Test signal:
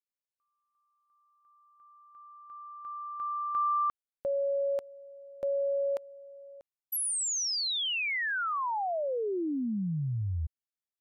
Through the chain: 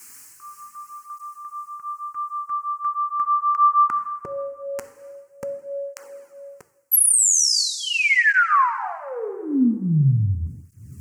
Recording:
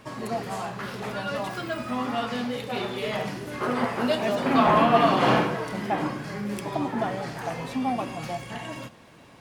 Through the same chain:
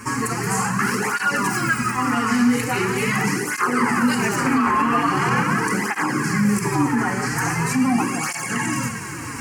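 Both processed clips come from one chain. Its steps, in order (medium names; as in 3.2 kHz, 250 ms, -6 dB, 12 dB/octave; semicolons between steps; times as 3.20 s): in parallel at +1.5 dB: compression, threshold -31 dBFS; on the sum: bass shelf 75 Hz -11.5 dB; plate-style reverb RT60 1.6 s, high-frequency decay 0.95×, DRR 9 dB; reverse; upward compressor, threshold -29 dBFS; reverse; peaking EQ 7.5 kHz +10 dB 1.3 oct; static phaser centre 1.5 kHz, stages 4; loudness maximiser +19 dB; cancelling through-zero flanger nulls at 0.42 Hz, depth 6.4 ms; trim -7 dB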